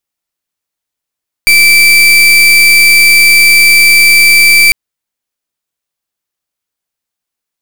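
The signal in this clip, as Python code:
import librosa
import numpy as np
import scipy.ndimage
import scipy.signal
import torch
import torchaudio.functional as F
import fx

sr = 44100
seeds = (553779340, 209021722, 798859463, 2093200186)

y = fx.pulse(sr, length_s=3.25, hz=2330.0, level_db=-4.5, duty_pct=36)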